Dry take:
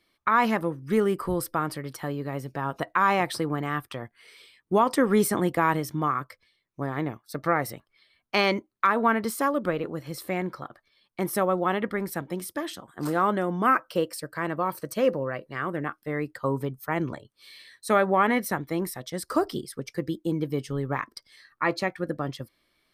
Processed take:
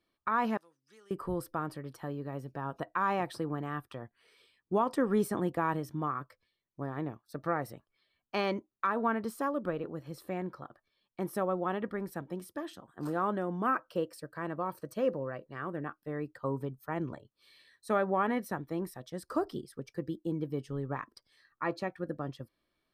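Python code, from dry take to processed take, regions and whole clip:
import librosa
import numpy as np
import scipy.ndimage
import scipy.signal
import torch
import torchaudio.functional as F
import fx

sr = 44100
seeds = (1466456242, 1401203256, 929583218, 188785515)

y = fx.chain(x, sr, fx.bandpass_q(hz=5700.0, q=2.2),
    fx.band_squash(depth_pct=40), at=(0.57, 1.11))
y = fx.high_shelf(y, sr, hz=2200.0, db=-8.5)
y = fx.notch(y, sr, hz=2100.0, q=8.7)
y = y * 10.0 ** (-6.5 / 20.0)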